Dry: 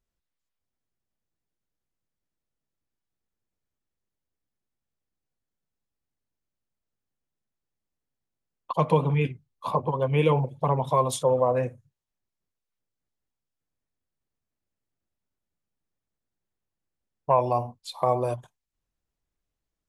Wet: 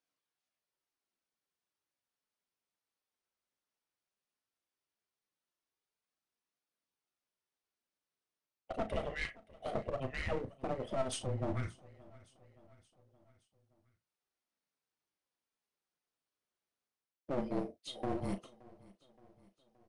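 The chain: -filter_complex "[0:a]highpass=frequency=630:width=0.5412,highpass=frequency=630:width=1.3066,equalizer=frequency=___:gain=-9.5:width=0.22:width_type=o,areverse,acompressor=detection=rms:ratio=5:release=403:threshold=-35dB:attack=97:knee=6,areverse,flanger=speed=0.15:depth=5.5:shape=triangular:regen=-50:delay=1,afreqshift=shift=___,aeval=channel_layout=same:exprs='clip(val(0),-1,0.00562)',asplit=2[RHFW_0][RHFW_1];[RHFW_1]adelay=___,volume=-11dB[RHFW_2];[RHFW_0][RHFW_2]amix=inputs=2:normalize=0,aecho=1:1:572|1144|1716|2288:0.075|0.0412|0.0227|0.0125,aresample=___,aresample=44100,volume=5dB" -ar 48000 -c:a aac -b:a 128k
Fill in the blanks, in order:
7700, -400, 36, 22050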